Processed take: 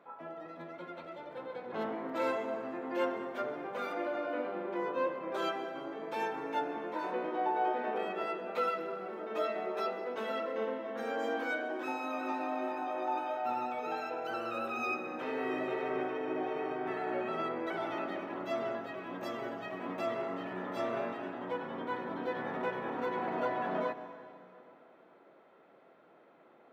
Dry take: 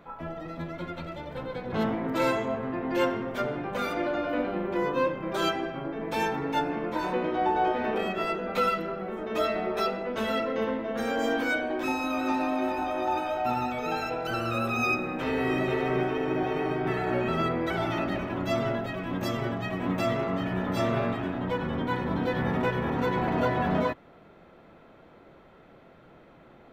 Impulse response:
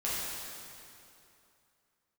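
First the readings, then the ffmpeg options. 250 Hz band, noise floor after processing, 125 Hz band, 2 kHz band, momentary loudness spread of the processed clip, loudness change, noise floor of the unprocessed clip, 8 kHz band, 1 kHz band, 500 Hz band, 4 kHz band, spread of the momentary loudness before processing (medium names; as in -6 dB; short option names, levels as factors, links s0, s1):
-10.5 dB, -61 dBFS, -20.0 dB, -8.0 dB, 7 LU, -7.5 dB, -54 dBFS, under -10 dB, -6.0 dB, -6.0 dB, -10.5 dB, 5 LU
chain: -filter_complex "[0:a]highpass=350,highshelf=f=2800:g=-10,asplit=2[s0][s1];[1:a]atrim=start_sample=2205,adelay=131[s2];[s1][s2]afir=irnorm=-1:irlink=0,volume=0.119[s3];[s0][s3]amix=inputs=2:normalize=0,volume=0.562"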